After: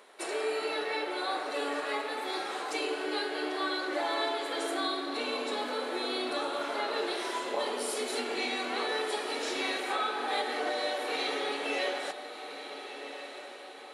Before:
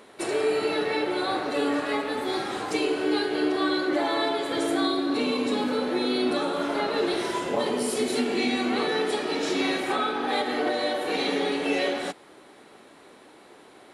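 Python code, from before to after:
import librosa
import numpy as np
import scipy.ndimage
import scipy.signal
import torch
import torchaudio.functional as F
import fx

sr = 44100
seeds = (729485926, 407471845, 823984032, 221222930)

y = scipy.signal.sosfilt(scipy.signal.butter(2, 490.0, 'highpass', fs=sr, output='sos'), x)
y = fx.echo_diffused(y, sr, ms=1408, feedback_pct=47, wet_db=-10.5)
y = y * librosa.db_to_amplitude(-4.0)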